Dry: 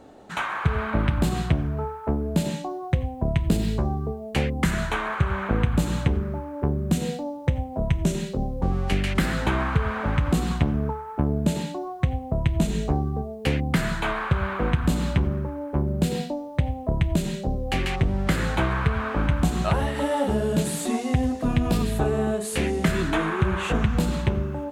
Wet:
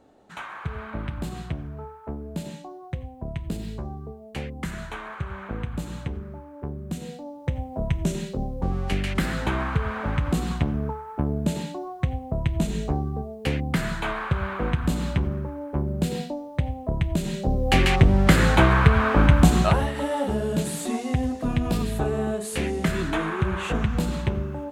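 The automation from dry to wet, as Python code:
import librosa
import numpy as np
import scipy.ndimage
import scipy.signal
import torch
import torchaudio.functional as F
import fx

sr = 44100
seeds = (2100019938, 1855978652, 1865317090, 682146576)

y = fx.gain(x, sr, db=fx.line((7.08, -9.0), (7.67, -2.0), (17.19, -2.0), (17.73, 6.5), (19.54, 6.5), (19.94, -2.0)))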